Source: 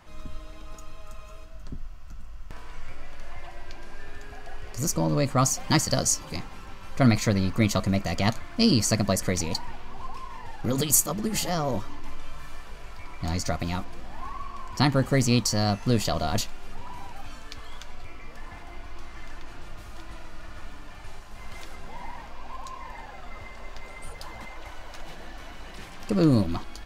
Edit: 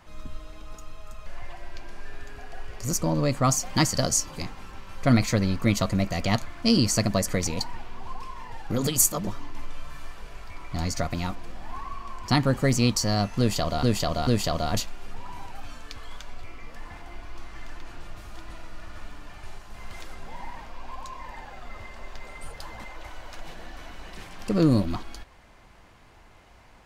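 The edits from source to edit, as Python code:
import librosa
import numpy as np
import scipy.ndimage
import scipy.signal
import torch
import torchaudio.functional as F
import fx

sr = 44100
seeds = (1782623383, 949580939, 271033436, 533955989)

y = fx.edit(x, sr, fx.cut(start_s=1.26, length_s=1.94),
    fx.cut(start_s=11.21, length_s=0.55),
    fx.repeat(start_s=15.88, length_s=0.44, count=3), tone=tone)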